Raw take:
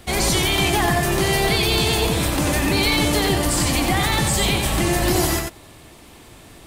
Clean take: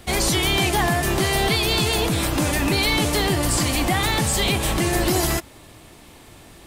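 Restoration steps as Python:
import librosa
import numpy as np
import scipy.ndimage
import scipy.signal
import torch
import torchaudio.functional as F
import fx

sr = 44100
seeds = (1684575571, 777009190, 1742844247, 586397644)

y = fx.fix_echo_inverse(x, sr, delay_ms=92, level_db=-4.5)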